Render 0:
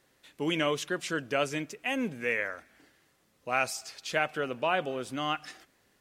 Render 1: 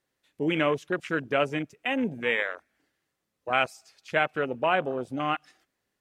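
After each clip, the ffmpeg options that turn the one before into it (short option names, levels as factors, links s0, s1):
-af "afwtdn=0.0178,volume=1.58"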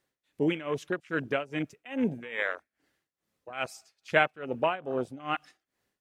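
-af "tremolo=f=2.4:d=0.9,volume=1.26"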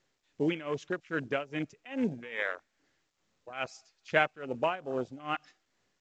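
-af "volume=0.75" -ar 16000 -c:a pcm_mulaw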